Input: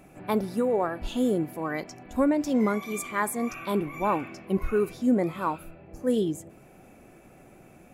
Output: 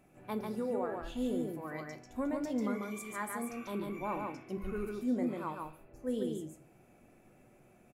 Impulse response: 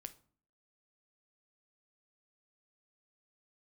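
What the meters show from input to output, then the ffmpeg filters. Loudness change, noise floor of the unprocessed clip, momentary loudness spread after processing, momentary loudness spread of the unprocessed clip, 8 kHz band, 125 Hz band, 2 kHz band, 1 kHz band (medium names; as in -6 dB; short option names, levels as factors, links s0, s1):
-10.0 dB, -53 dBFS, 8 LU, 8 LU, -10.5 dB, -10.0 dB, -10.0 dB, -10.5 dB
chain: -filter_complex "[0:a]aecho=1:1:143:0.668[s0];[1:a]atrim=start_sample=2205[s1];[s0][s1]afir=irnorm=-1:irlink=0,volume=0.473"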